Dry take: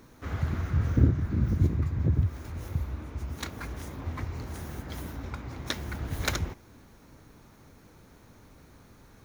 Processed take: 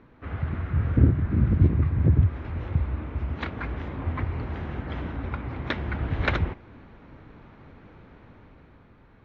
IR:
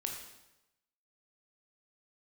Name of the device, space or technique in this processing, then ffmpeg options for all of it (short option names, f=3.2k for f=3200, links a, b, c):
action camera in a waterproof case: -af "lowpass=f=2.9k:w=0.5412,lowpass=f=2.9k:w=1.3066,dynaudnorm=f=120:g=17:m=6dB" -ar 44100 -c:a aac -b:a 48k